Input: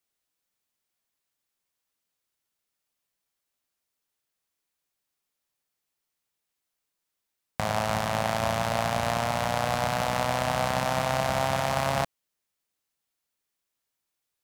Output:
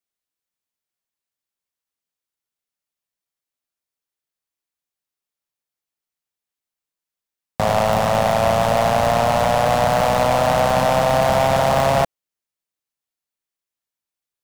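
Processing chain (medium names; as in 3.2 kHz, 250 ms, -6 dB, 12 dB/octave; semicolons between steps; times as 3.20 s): dynamic bell 530 Hz, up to +5 dB, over -39 dBFS, Q 0.97; waveshaping leveller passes 3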